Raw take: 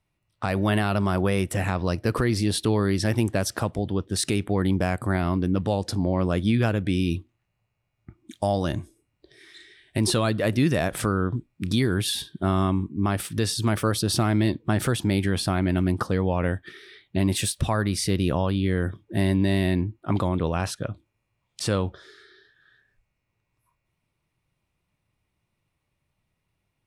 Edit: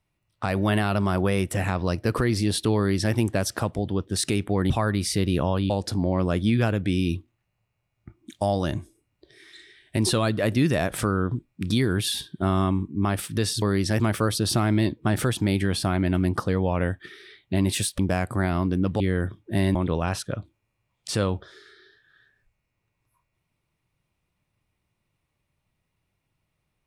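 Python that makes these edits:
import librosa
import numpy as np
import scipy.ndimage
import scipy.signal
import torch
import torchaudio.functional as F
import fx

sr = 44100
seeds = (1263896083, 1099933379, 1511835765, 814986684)

y = fx.edit(x, sr, fx.duplicate(start_s=2.76, length_s=0.38, to_s=13.63),
    fx.swap(start_s=4.7, length_s=1.01, other_s=17.62, other_length_s=1.0),
    fx.cut(start_s=19.37, length_s=0.9), tone=tone)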